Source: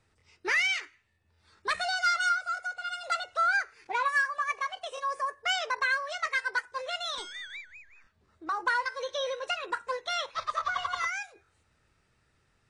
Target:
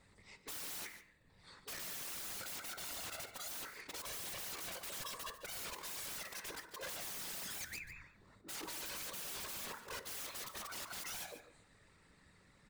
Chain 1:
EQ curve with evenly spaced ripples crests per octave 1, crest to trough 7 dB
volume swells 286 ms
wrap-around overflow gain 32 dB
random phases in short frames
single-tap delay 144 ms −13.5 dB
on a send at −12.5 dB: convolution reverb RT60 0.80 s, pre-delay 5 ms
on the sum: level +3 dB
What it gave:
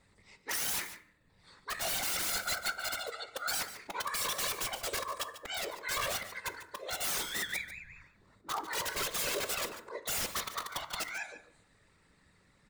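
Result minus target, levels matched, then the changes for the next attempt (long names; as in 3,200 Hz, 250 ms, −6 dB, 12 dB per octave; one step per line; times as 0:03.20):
wrap-around overflow: distortion −20 dB
change: wrap-around overflow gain 43.5 dB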